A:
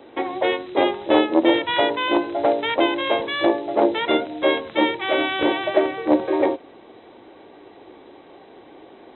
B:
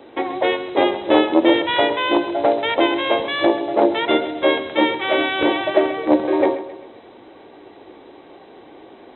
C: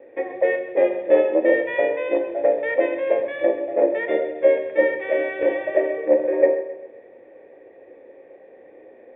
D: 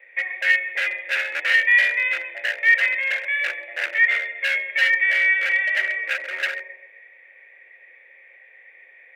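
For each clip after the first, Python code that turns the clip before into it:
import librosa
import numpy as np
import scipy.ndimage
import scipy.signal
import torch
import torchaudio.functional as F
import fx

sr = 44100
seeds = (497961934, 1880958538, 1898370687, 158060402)

y1 = fx.echo_feedback(x, sr, ms=132, feedback_pct=45, wet_db=-13.5)
y1 = F.gain(torch.from_numpy(y1), 2.0).numpy()
y2 = fx.formant_cascade(y1, sr, vowel='e')
y2 = fx.rev_schroeder(y2, sr, rt60_s=0.55, comb_ms=28, drr_db=8.5)
y2 = F.gain(torch.from_numpy(y2), 6.0).numpy()
y3 = np.clip(y2, -10.0 ** (-18.5 / 20.0), 10.0 ** (-18.5 / 20.0))
y3 = fx.highpass_res(y3, sr, hz=2100.0, q=5.7)
y3 = F.gain(torch.from_numpy(y3), 4.0).numpy()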